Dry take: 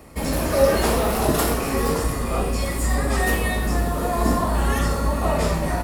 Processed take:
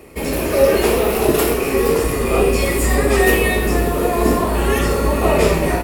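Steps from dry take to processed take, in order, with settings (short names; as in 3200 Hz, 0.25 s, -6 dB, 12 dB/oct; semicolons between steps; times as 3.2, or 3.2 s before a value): fifteen-band EQ 400 Hz +12 dB, 2500 Hz +9 dB, 16000 Hz +9 dB; AGC; gain -1 dB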